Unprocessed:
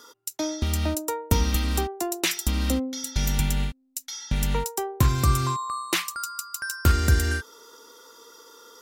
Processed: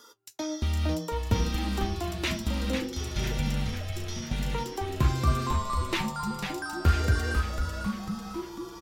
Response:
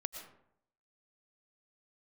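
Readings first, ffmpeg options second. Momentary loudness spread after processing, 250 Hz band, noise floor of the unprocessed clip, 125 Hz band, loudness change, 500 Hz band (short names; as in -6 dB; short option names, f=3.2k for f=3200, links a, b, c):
9 LU, -1.5 dB, -63 dBFS, -3.0 dB, -4.0 dB, -2.5 dB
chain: -filter_complex "[0:a]acrossover=split=4700[a][b];[b]acompressor=threshold=-40dB:ratio=4:attack=1:release=60[c];[a][c]amix=inputs=2:normalize=0,flanger=delay=8.8:depth=5.1:regen=52:speed=0.68:shape=sinusoidal,asplit=9[d][e][f][g][h][i][j][k][l];[e]adelay=497,afreqshift=-140,volume=-5.5dB[m];[f]adelay=994,afreqshift=-280,volume=-10.1dB[n];[g]adelay=1491,afreqshift=-420,volume=-14.7dB[o];[h]adelay=1988,afreqshift=-560,volume=-19.2dB[p];[i]adelay=2485,afreqshift=-700,volume=-23.8dB[q];[j]adelay=2982,afreqshift=-840,volume=-28.4dB[r];[k]adelay=3479,afreqshift=-980,volume=-33dB[s];[l]adelay=3976,afreqshift=-1120,volume=-37.6dB[t];[d][m][n][o][p][q][r][s][t]amix=inputs=9:normalize=0"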